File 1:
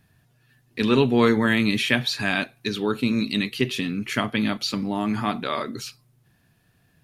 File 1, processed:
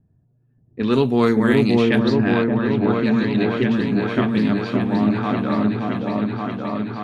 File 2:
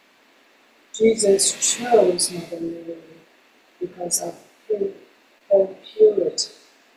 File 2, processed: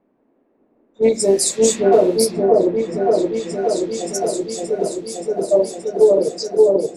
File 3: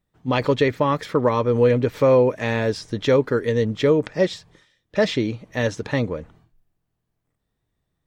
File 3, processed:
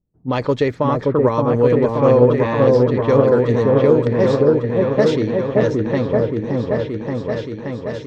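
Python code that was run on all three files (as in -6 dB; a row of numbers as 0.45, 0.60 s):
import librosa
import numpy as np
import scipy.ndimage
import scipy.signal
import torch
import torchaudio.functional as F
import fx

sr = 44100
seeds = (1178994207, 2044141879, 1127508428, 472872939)

y = fx.env_lowpass(x, sr, base_hz=410.0, full_db=-15.0)
y = fx.dynamic_eq(y, sr, hz=2700.0, q=1.0, threshold_db=-40.0, ratio=4.0, max_db=-6)
y = fx.echo_opening(y, sr, ms=575, hz=750, octaves=1, feedback_pct=70, wet_db=0)
y = fx.doppler_dist(y, sr, depth_ms=0.1)
y = y * librosa.db_to_amplitude(1.5)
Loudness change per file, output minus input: +4.0, +2.5, +4.5 LU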